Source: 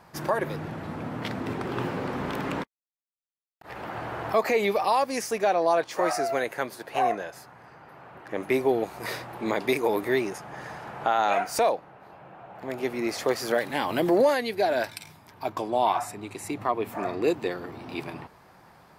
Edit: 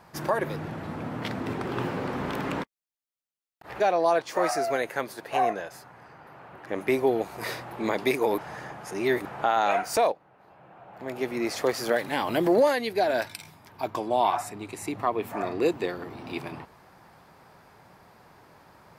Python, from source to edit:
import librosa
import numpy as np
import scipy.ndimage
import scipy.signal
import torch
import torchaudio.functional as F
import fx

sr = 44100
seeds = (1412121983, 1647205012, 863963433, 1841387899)

y = fx.edit(x, sr, fx.cut(start_s=3.8, length_s=1.62),
    fx.reverse_span(start_s=10.0, length_s=0.87),
    fx.fade_in_from(start_s=11.74, length_s=1.24, floor_db=-12.0), tone=tone)